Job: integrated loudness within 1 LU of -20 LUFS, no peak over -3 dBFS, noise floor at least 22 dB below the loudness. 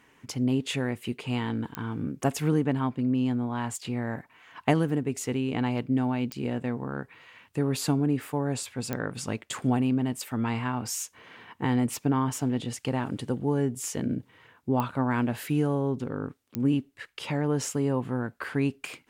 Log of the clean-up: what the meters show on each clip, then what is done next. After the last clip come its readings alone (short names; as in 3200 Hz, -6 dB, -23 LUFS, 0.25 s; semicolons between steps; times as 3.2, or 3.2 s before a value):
clicks 5; loudness -29.0 LUFS; peak -9.5 dBFS; loudness target -20.0 LUFS
-> de-click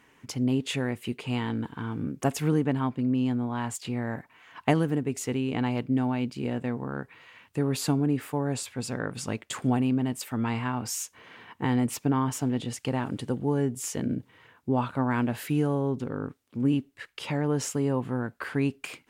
clicks 0; loudness -29.0 LUFS; peak -9.5 dBFS; loudness target -20.0 LUFS
-> gain +9 dB; limiter -3 dBFS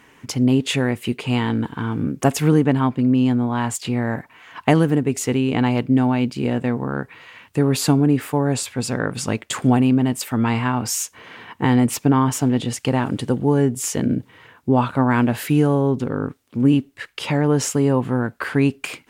loudness -20.0 LUFS; peak -3.0 dBFS; noise floor -54 dBFS